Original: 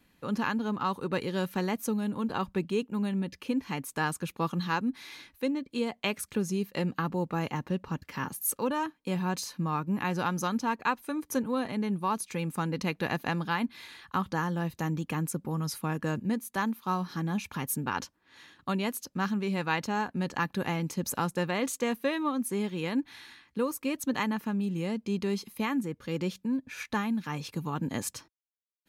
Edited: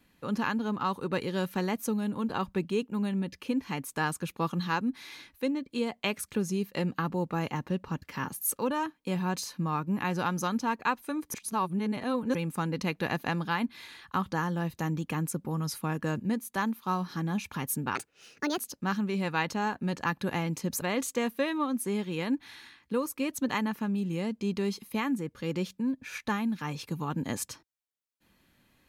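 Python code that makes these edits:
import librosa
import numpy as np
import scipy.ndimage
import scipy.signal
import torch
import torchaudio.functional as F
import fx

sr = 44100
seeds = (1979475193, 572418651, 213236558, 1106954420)

y = fx.edit(x, sr, fx.reverse_span(start_s=11.34, length_s=1.01),
    fx.speed_span(start_s=17.95, length_s=0.96, speed=1.53),
    fx.cut(start_s=21.15, length_s=0.32), tone=tone)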